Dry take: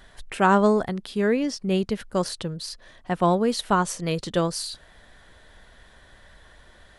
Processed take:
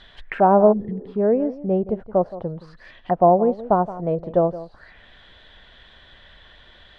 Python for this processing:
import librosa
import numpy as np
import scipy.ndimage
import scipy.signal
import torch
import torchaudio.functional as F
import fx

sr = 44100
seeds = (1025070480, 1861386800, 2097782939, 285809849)

y = x + 10.0 ** (-15.5 / 20.0) * np.pad(x, (int(171 * sr / 1000.0), 0))[:len(x)]
y = fx.spec_repair(y, sr, seeds[0], start_s=0.75, length_s=0.35, low_hz=240.0, high_hz=1700.0, source='after')
y = fx.envelope_lowpass(y, sr, base_hz=690.0, top_hz=3900.0, q=3.4, full_db=-26.5, direction='down')